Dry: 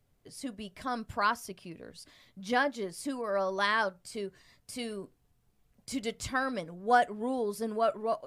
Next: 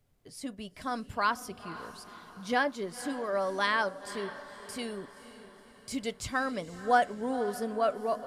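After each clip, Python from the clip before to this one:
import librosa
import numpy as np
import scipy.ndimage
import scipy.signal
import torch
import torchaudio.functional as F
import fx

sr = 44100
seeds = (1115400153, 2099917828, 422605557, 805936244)

y = fx.echo_diffused(x, sr, ms=512, feedback_pct=50, wet_db=-14.0)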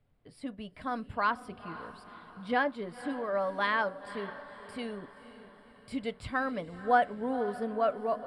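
y = scipy.signal.lfilter(np.full(7, 1.0 / 7), 1.0, x)
y = fx.notch(y, sr, hz=380.0, q=12.0)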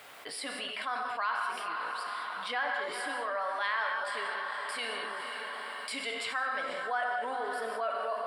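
y = scipy.signal.sosfilt(scipy.signal.butter(2, 1000.0, 'highpass', fs=sr, output='sos'), x)
y = fx.rev_gated(y, sr, seeds[0], gate_ms=230, shape='flat', drr_db=3.0)
y = fx.env_flatten(y, sr, amount_pct=70)
y = F.gain(torch.from_numpy(y), -5.0).numpy()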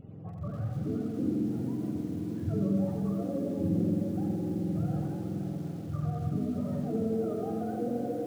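y = fx.octave_mirror(x, sr, pivot_hz=570.0)
y = fx.echo_feedback(y, sr, ms=87, feedback_pct=36, wet_db=-5.0)
y = fx.echo_crushed(y, sr, ms=289, feedback_pct=55, bits=8, wet_db=-11.0)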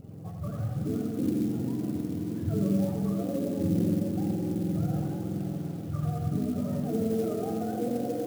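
y = fx.clock_jitter(x, sr, seeds[1], jitter_ms=0.033)
y = F.gain(torch.from_numpy(y), 2.0).numpy()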